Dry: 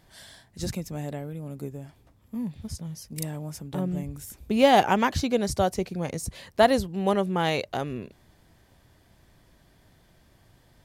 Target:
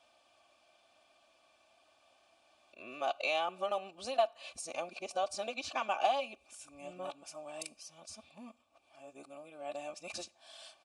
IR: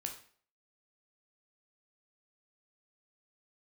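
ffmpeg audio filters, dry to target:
-filter_complex "[0:a]areverse,aecho=1:1:3.4:0.6,acompressor=threshold=-24dB:ratio=12,asplit=3[a][b][c];[a]bandpass=f=730:t=q:w=8,volume=0dB[d];[b]bandpass=f=1.09k:t=q:w=8,volume=-6dB[e];[c]bandpass=f=2.44k:t=q:w=8,volume=-9dB[f];[d][e][f]amix=inputs=3:normalize=0,crystalizer=i=9.5:c=0,asplit=2[g][h];[1:a]atrim=start_sample=2205[i];[h][i]afir=irnorm=-1:irlink=0,volume=-13.5dB[j];[g][j]amix=inputs=2:normalize=0,aresample=22050,aresample=44100"

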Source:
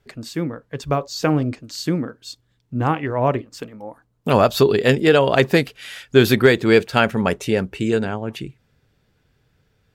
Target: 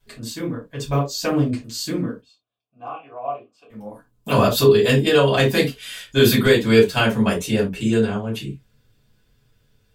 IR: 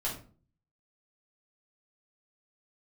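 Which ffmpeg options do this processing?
-filter_complex "[0:a]asettb=1/sr,asplit=3[a][b][c];[a]atrim=end=2.204[d];[b]atrim=start=2.2:end=3.7,asetpts=PTS-STARTPTS,afade=t=in:d=0.004:c=qsin,afade=t=out:st=1.496:d=0.004:c=qsin,asplit=3[e][f][g];[e]bandpass=f=730:t=q:w=8,volume=0dB[h];[f]bandpass=f=1.09k:t=q:w=8,volume=-6dB[i];[g]bandpass=f=2.44k:t=q:w=8,volume=-9dB[j];[h][i][j]amix=inputs=3:normalize=0[k];[c]atrim=start=3.696[l];[d][k]acrossfade=d=0.004:c1=hsin:c2=qsin[m];[m][l]acrossfade=d=0.004:c1=qsin:c2=hsin[n];[1:a]atrim=start_sample=2205,atrim=end_sample=6615,asetrate=70560,aresample=44100[o];[n][o]afir=irnorm=-1:irlink=0,aexciter=amount=2.8:drive=2.4:freq=2.9k,volume=-3dB"

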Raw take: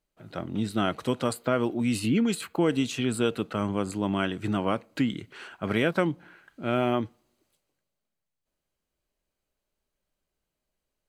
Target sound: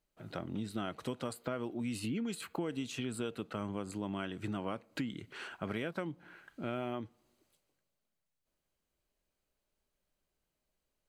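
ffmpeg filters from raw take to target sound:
-af "acompressor=threshold=-36dB:ratio=3,volume=-1.5dB"

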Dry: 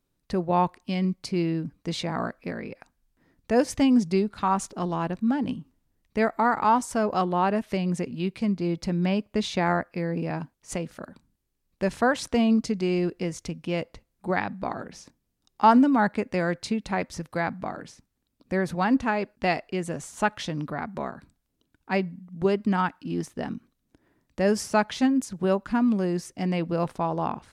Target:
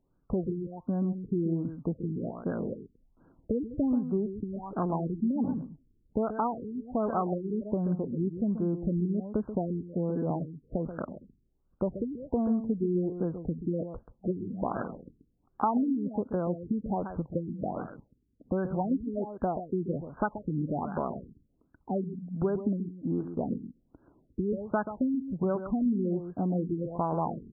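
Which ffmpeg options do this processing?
-af "acompressor=threshold=-31dB:ratio=4,aecho=1:1:133:0.316,afftfilt=real='re*lt(b*sr/1024,430*pow(1700/430,0.5+0.5*sin(2*PI*1.3*pts/sr)))':imag='im*lt(b*sr/1024,430*pow(1700/430,0.5+0.5*sin(2*PI*1.3*pts/sr)))':win_size=1024:overlap=0.75,volume=4dB"

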